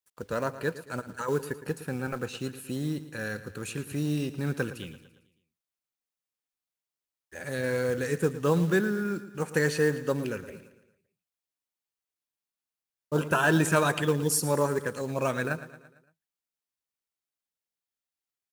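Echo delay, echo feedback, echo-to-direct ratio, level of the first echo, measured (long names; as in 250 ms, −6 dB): 113 ms, 52%, −13.0 dB, −14.5 dB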